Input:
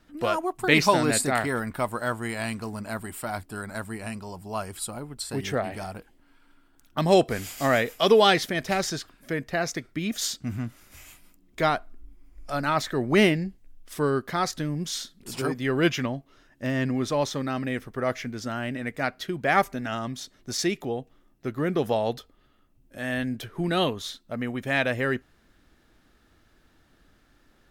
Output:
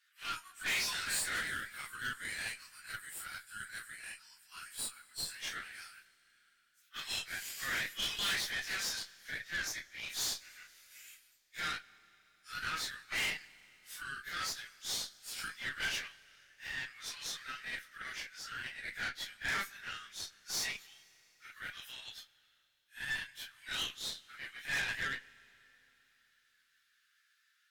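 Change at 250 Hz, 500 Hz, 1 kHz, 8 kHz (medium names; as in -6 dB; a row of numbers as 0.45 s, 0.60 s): -30.0 dB, -31.0 dB, -18.5 dB, -5.5 dB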